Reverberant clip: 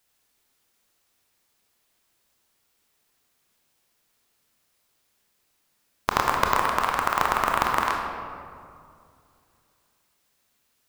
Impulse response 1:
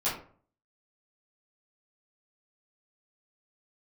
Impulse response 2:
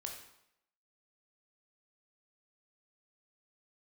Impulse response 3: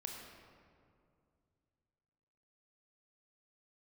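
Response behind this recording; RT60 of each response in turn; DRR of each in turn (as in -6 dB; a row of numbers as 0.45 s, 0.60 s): 3; 0.45 s, 0.80 s, 2.4 s; -11.5 dB, 1.0 dB, 0.5 dB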